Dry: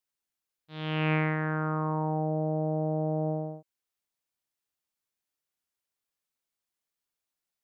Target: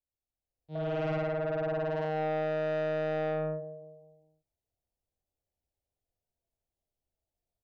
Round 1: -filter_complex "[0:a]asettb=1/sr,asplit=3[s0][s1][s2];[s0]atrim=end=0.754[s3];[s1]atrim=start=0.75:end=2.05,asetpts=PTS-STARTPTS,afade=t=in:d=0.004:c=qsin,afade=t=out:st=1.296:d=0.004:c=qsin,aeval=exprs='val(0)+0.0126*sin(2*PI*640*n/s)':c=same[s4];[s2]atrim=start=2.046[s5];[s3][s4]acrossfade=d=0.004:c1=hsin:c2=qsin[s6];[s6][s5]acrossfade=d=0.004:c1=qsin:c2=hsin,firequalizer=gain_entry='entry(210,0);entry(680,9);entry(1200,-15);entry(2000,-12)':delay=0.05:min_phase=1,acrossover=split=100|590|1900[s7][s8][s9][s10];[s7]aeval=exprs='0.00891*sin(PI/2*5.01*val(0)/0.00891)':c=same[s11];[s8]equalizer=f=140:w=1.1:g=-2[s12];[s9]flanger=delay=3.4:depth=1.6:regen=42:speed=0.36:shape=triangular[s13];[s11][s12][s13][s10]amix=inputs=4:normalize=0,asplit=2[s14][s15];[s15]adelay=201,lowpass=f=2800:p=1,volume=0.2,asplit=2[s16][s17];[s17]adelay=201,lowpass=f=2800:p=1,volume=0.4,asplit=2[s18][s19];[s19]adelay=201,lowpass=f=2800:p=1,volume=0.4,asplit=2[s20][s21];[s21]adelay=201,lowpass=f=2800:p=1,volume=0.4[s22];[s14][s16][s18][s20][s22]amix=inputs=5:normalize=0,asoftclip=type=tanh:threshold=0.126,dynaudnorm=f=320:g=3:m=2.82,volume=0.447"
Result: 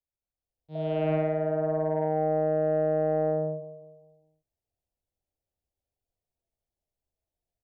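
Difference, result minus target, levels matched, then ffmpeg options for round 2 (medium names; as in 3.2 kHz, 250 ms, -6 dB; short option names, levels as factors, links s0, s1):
saturation: distortion -14 dB
-filter_complex "[0:a]asettb=1/sr,asplit=3[s0][s1][s2];[s0]atrim=end=0.754[s3];[s1]atrim=start=0.75:end=2.05,asetpts=PTS-STARTPTS,afade=t=in:d=0.004:c=qsin,afade=t=out:st=1.296:d=0.004:c=qsin,aeval=exprs='val(0)+0.0126*sin(2*PI*640*n/s)':c=same[s4];[s2]atrim=start=2.046[s5];[s3][s4]acrossfade=d=0.004:c1=hsin:c2=qsin[s6];[s6][s5]acrossfade=d=0.004:c1=qsin:c2=hsin,firequalizer=gain_entry='entry(210,0);entry(680,9);entry(1200,-15);entry(2000,-12)':delay=0.05:min_phase=1,acrossover=split=100|590|1900[s7][s8][s9][s10];[s7]aeval=exprs='0.00891*sin(PI/2*5.01*val(0)/0.00891)':c=same[s11];[s8]equalizer=f=140:w=1.1:g=-2[s12];[s9]flanger=delay=3.4:depth=1.6:regen=42:speed=0.36:shape=triangular[s13];[s11][s12][s13][s10]amix=inputs=4:normalize=0,asplit=2[s14][s15];[s15]adelay=201,lowpass=f=2800:p=1,volume=0.2,asplit=2[s16][s17];[s17]adelay=201,lowpass=f=2800:p=1,volume=0.4,asplit=2[s18][s19];[s19]adelay=201,lowpass=f=2800:p=1,volume=0.4,asplit=2[s20][s21];[s21]adelay=201,lowpass=f=2800:p=1,volume=0.4[s22];[s14][s16][s18][s20][s22]amix=inputs=5:normalize=0,asoftclip=type=tanh:threshold=0.0335,dynaudnorm=f=320:g=3:m=2.82,volume=0.447"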